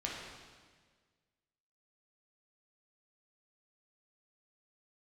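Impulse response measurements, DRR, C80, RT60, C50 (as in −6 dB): −4.0 dB, 2.5 dB, 1.6 s, 0.5 dB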